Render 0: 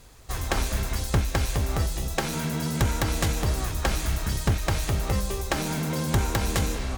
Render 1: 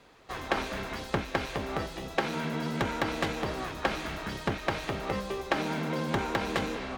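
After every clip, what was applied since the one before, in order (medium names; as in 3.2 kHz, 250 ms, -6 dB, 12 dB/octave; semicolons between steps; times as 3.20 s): three-band isolator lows -19 dB, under 180 Hz, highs -19 dB, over 4 kHz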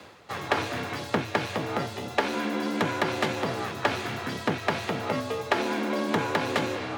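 reverse; upward compressor, threshold -37 dBFS; reverse; frequency shift +58 Hz; trim +3.5 dB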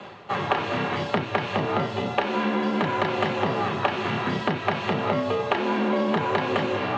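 compression, threshold -28 dBFS, peak gain reduction 10 dB; distance through air 110 m; reverberation, pre-delay 3 ms, DRR 5 dB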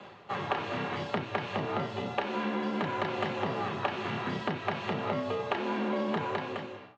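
fade out at the end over 0.75 s; trim -7.5 dB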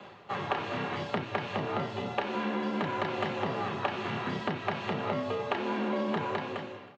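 delay 319 ms -19.5 dB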